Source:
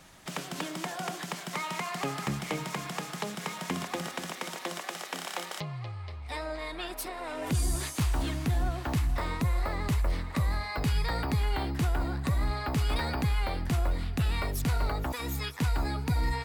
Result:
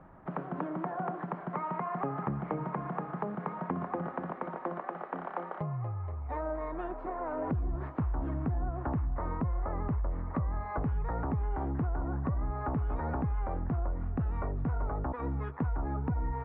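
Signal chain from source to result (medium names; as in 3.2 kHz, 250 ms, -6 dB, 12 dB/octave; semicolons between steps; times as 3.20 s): low-pass 1.3 kHz 24 dB/octave; compression, threshold -32 dBFS, peak gain reduction 8 dB; trim +3 dB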